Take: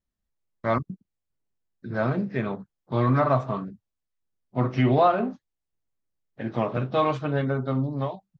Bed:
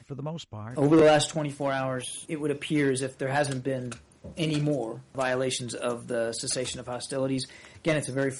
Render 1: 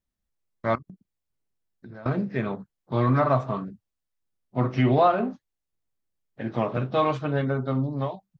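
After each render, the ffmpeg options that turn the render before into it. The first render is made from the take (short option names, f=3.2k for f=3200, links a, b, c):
-filter_complex "[0:a]asettb=1/sr,asplit=3[a][b][c];[a]atrim=end=0.754[d];[b]atrim=start=0.75:end=2.06,asetpts=PTS-STARTPTS,afade=t=in:d=0.004:c=qsin,afade=t=out:st=1.306:d=0.004:c=qsin,acompressor=threshold=-39dB:ratio=8:attack=3.2:release=140:knee=1:detection=peak[e];[c]atrim=start=2.056[f];[d][e]acrossfade=d=0.004:c1=hsin:c2=qsin[g];[g][f]acrossfade=d=0.004:c1=qsin:c2=hsin"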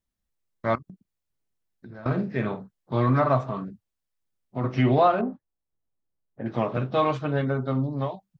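-filter_complex "[0:a]asettb=1/sr,asplit=3[a][b][c];[a]atrim=end=1.944[d];[b]atrim=start=1.94:end=2.95,asetpts=PTS-STARTPTS,afade=t=in:d=0.004:c=qsin,afade=t=out:st=1.006:d=0.004:c=qsin,asplit=2[e][f];[f]adelay=47,volume=-8.5dB[g];[e][g]amix=inputs=2:normalize=0,atrim=end_sample=44541[h];[c]atrim=start=2.946[i];[d][h]acrossfade=d=0.004:c1=hsin:c2=qsin[j];[j][i]acrossfade=d=0.004:c1=qsin:c2=hsin,asettb=1/sr,asplit=3[k][l][m];[k]atrim=end=3.484[n];[l]atrim=start=3.48:end=4.64,asetpts=PTS-STARTPTS,afade=t=in:d=0.004:c=qsin,afade=t=out:st=1.156:d=0.004:c=qsin,acompressor=threshold=-26dB:ratio=2:attack=3.2:release=140:knee=1:detection=peak[o];[m]atrim=start=4.636[p];[n][o]acrossfade=d=0.004:c1=hsin:c2=qsin[q];[q][p]acrossfade=d=0.004:c1=qsin:c2=hsin,asettb=1/sr,asplit=3[r][s][t];[r]atrim=end=5.214[u];[s]atrim=start=5.21:end=6.46,asetpts=PTS-STARTPTS,afade=t=in:d=0.004:c=qsin,afade=t=out:st=1.246:d=0.004:c=qsin,lowpass=1.1k[v];[t]atrim=start=6.456[w];[u][v]acrossfade=d=0.004:c1=hsin:c2=qsin[x];[x][w]acrossfade=d=0.004:c1=qsin:c2=hsin"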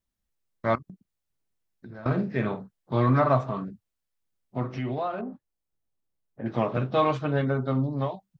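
-filter_complex "[0:a]asettb=1/sr,asplit=3[a][b][c];[a]atrim=end=4.634[d];[b]atrim=start=4.63:end=6.43,asetpts=PTS-STARTPTS,afade=t=in:d=0.004:c=qsin,afade=t=out:st=1.796:d=0.004:c=qsin,acompressor=threshold=-35dB:ratio=2:attack=3.2:release=140:knee=1:detection=peak[e];[c]atrim=start=6.426[f];[d][e]acrossfade=d=0.004:c1=hsin:c2=qsin[g];[g][f]acrossfade=d=0.004:c1=qsin:c2=hsin"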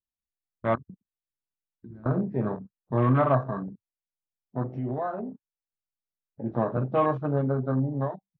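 -af "lowpass=f=2k:p=1,afwtdn=0.02"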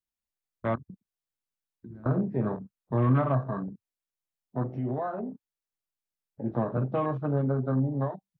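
-filter_complex "[0:a]acrossover=split=280[a][b];[b]acompressor=threshold=-29dB:ratio=2.5[c];[a][c]amix=inputs=2:normalize=0"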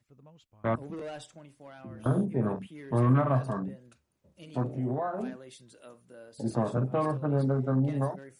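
-filter_complex "[1:a]volume=-21dB[a];[0:a][a]amix=inputs=2:normalize=0"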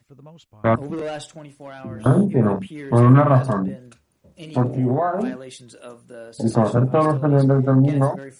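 -af "volume=11dB"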